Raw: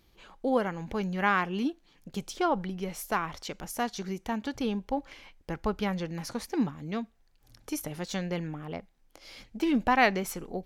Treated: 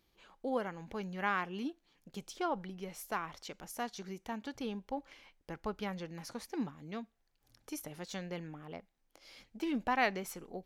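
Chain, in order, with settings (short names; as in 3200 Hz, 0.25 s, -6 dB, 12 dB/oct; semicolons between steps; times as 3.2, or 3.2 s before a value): low shelf 150 Hz -6.5 dB; gain -7.5 dB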